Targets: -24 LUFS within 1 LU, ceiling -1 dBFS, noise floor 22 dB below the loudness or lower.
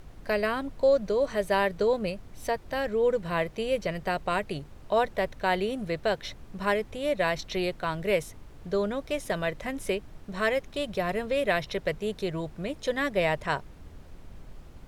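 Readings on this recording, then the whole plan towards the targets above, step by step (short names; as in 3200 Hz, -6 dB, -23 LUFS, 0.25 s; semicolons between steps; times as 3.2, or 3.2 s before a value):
noise floor -49 dBFS; noise floor target -51 dBFS; loudness -29.0 LUFS; peak -12.0 dBFS; loudness target -24.0 LUFS
-> noise print and reduce 6 dB; gain +5 dB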